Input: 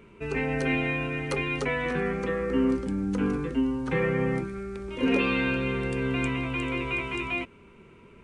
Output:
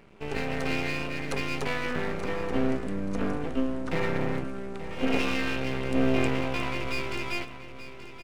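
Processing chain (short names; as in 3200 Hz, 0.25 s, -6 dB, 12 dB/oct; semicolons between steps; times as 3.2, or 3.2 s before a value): 5.93–6.69 bell 260 Hz -> 820 Hz +12 dB 0.91 oct; half-wave rectifier; on a send: feedback echo 0.88 s, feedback 28%, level -13 dB; on the sum: gain +1.5 dB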